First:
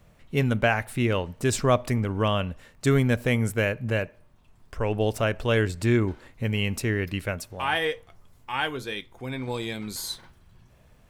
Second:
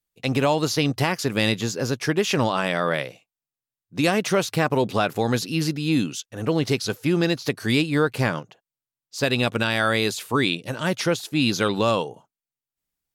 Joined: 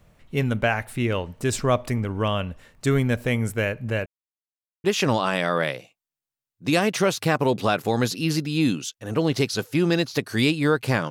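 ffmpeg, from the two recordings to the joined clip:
ffmpeg -i cue0.wav -i cue1.wav -filter_complex "[0:a]apad=whole_dur=11.1,atrim=end=11.1,asplit=2[link_01][link_02];[link_01]atrim=end=4.06,asetpts=PTS-STARTPTS,afade=type=out:start_time=4.056:duration=0.004:curve=hsin[link_03];[link_02]atrim=start=4.06:end=4.84,asetpts=PTS-STARTPTS,volume=0[link_04];[1:a]atrim=start=2.15:end=8.41,asetpts=PTS-STARTPTS,afade=type=in:duration=0.004:curve=hsin[link_05];[link_03][link_04][link_05]concat=n=3:v=0:a=1" out.wav

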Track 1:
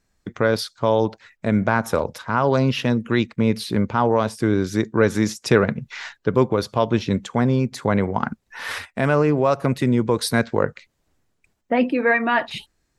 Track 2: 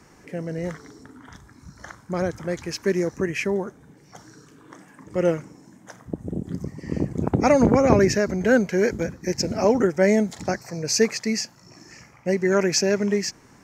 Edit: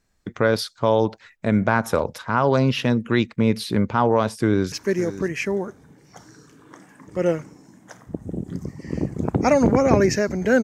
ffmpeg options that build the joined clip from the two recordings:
ffmpeg -i cue0.wav -i cue1.wav -filter_complex "[0:a]apad=whole_dur=10.63,atrim=end=10.63,atrim=end=4.722[link_01];[1:a]atrim=start=2.708:end=8.62[link_02];[link_01][link_02]acrossfade=duration=0.004:curve1=hsin:curve2=hsin,asplit=2[link_03][link_04];[link_04]afade=type=in:start_time=4.41:duration=0.01,afade=type=out:start_time=4.72:duration=0.01,aecho=0:1:560|1120:0.188365|0.0188365[link_05];[link_03][link_05]amix=inputs=2:normalize=0" out.wav

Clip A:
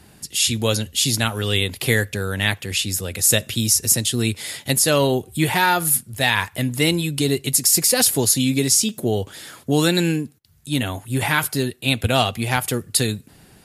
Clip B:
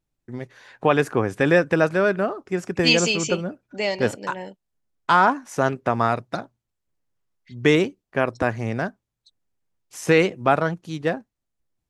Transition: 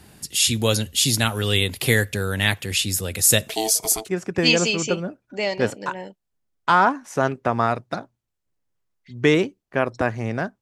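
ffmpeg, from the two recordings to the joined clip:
ffmpeg -i cue0.wav -i cue1.wav -filter_complex "[0:a]asettb=1/sr,asplit=3[link_01][link_02][link_03];[link_01]atrim=end=3.484[link_04];[link_02]atrim=start=3.48:end=4.09,asetpts=PTS-STARTPTS,afade=type=in:duration=0.004:curve=qsin,afade=type=out:start_time=0.606:duration=0.004:curve=qsin,aeval=exprs='val(0)*sin(2*PI*550*n/s)':channel_layout=same[link_05];[link_03]atrim=start=4.086[link_06];[link_04][link_05]acrossfade=duration=0.004:curve1=hsin:curve2=qsin[link_07];[link_07][link_06]acrossfade=duration=0.004:curve1=qsin:curve2=hsin,apad=whole_dur=10.61,atrim=end=10.61,atrim=end=4.09,asetpts=PTS-STARTPTS[link_08];[1:a]atrim=start=2.32:end=9.02,asetpts=PTS-STARTPTS[link_09];[link_08][link_09]acrossfade=duration=0.18:curve1=tri:curve2=tri" out.wav

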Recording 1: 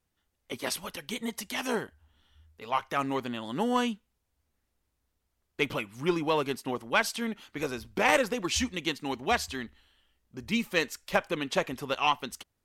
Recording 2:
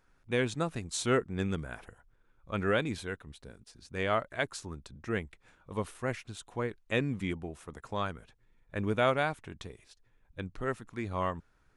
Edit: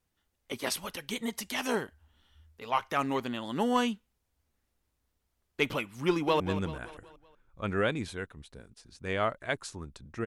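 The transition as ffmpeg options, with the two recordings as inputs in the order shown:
ffmpeg -i cue0.wav -i cue1.wav -filter_complex "[0:a]apad=whole_dur=10.26,atrim=end=10.26,atrim=end=6.402[link_01];[1:a]atrim=start=1.298:end=5.16[link_02];[link_01][link_02]acrossfade=duration=0.004:curve1=hsin:curve2=hsin,asplit=2[link_03][link_04];[link_04]afade=type=in:start_time=6.08:duration=0.01,afade=type=out:start_time=6.4:duration=0.01,aecho=0:1:190|380|570|760|950:0.266073|0.133036|0.0665181|0.0332591|0.0166295[link_05];[link_03][link_05]amix=inputs=2:normalize=0" out.wav

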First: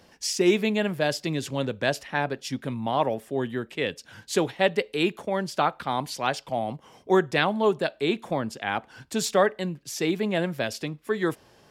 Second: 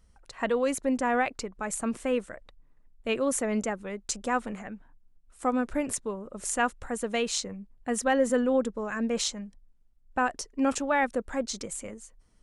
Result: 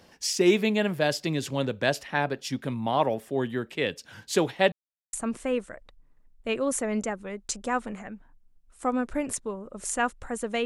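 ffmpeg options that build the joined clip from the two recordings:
ffmpeg -i cue0.wav -i cue1.wav -filter_complex "[0:a]apad=whole_dur=10.65,atrim=end=10.65,asplit=2[link_01][link_02];[link_01]atrim=end=4.72,asetpts=PTS-STARTPTS,afade=type=out:start_time=4.716:duration=0.004:curve=hsin[link_03];[link_02]atrim=start=4.72:end=5.13,asetpts=PTS-STARTPTS,volume=0[link_04];[1:a]atrim=start=1.73:end=7.25,asetpts=PTS-STARTPTS,afade=type=in:duration=0.004:curve=hsin[link_05];[link_03][link_04][link_05]concat=n=3:v=0:a=1" out.wav

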